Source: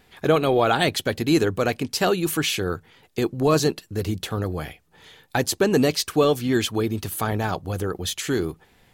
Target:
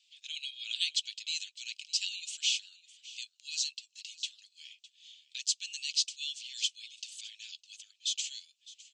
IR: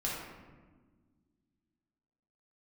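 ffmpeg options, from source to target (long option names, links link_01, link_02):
-filter_complex "[0:a]asuperpass=centerf=4700:order=12:qfactor=0.89,asplit=2[link_01][link_02];[link_02]aecho=0:1:608:0.112[link_03];[link_01][link_03]amix=inputs=2:normalize=0,volume=-3dB"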